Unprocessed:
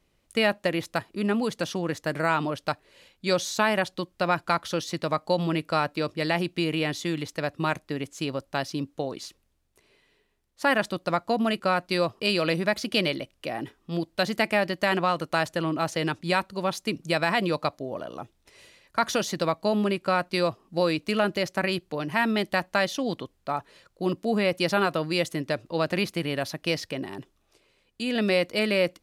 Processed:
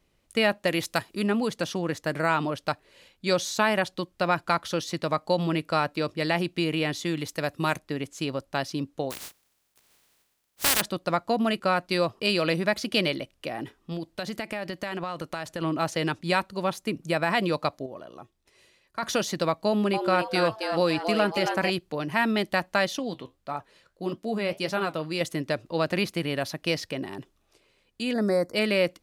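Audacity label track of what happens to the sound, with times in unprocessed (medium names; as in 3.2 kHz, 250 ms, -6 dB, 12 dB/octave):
0.670000	1.240000	treble shelf 2.9 kHz +9 dB
7.210000	7.760000	treble shelf 10 kHz -> 6.2 kHz +11.5 dB
9.100000	10.800000	spectral contrast reduction exponent 0.13
13.470000	15.620000	compression, threshold -28 dBFS
16.690000	17.300000	dynamic bell 4.5 kHz, up to -7 dB, over -43 dBFS, Q 0.81
17.860000	19.030000	feedback comb 370 Hz, decay 0.17 s, harmonics odd
19.660000	21.700000	frequency-shifting echo 273 ms, feedback 45%, per repeat +150 Hz, level -6 dB
22.990000	25.210000	flange 1.7 Hz, delay 6.5 ms, depth 7.3 ms, regen -65%
28.130000	28.540000	Butterworth band-stop 2.9 kHz, Q 0.77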